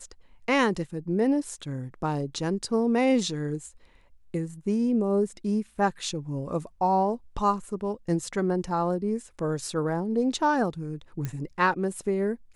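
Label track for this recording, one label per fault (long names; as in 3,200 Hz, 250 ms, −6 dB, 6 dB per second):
11.250000	11.250000	click −18 dBFS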